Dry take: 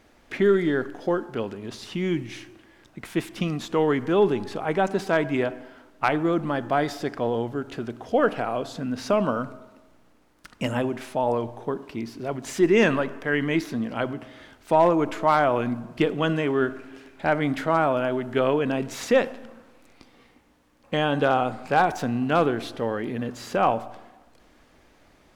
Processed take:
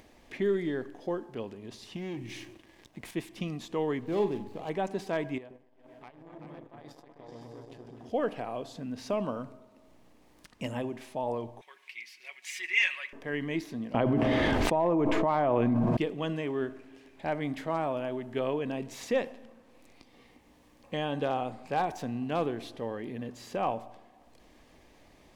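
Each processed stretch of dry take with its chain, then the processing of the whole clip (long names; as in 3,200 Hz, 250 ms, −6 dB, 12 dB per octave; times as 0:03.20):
0:01.96–0:03.11: leveller curve on the samples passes 2 + downward compressor 2.5 to 1, threshold −30 dBFS
0:04.01–0:04.70: running median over 25 samples + double-tracking delay 44 ms −9 dB
0:05.38–0:08.10: downward compressor 2.5 to 1, threshold −41 dBFS + echo whose low-pass opens from repeat to repeat 126 ms, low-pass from 400 Hz, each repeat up 2 octaves, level 0 dB + saturating transformer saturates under 640 Hz
0:11.61–0:13.13: high-pass with resonance 2,200 Hz, resonance Q 4.5 + comb filter 5.4 ms, depth 66%
0:13.94–0:15.97: low-pass filter 1,300 Hz 6 dB per octave + envelope flattener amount 100%
whole clip: parametric band 1,400 Hz −11 dB 0.28 octaves; upward compression, threshold −40 dBFS; level −8.5 dB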